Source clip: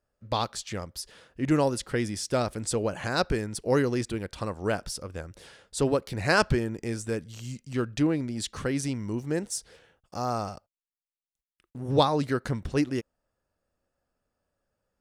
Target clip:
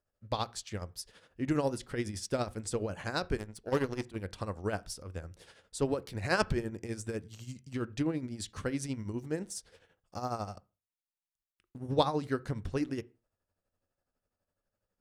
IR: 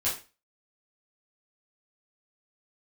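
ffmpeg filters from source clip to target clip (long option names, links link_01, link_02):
-filter_complex "[0:a]tremolo=f=12:d=0.65,asettb=1/sr,asplit=3[link_01][link_02][link_03];[link_01]atrim=end=3.374[link_04];[link_02]atrim=start=3.37:end=4.16,asetpts=PTS-STARTPTS,afade=type=in:duration=0.004:curve=qsin,afade=type=out:start_time=0.786:duration=0.004:curve=qsin,aeval=exprs='0.188*(cos(1*acos(clip(val(0)/0.188,-1,1)))-cos(1*PI/2))+0.0188*(cos(7*acos(clip(val(0)/0.188,-1,1)))-cos(7*PI/2))':channel_layout=same[link_05];[link_03]atrim=start=4.156[link_06];[link_04][link_05]acrossfade=duration=0.004:curve1=hsin:curve2=qsin[link_07];[link_07][link_06]acrossfade=duration=0.004:curve1=qsin:curve2=hsin,asplit=2[link_08][link_09];[1:a]atrim=start_sample=2205,lowpass=2500,lowshelf=frequency=200:gain=11.5[link_10];[link_09][link_10]afir=irnorm=-1:irlink=0,volume=-24.5dB[link_11];[link_08][link_11]amix=inputs=2:normalize=0,volume=-4dB"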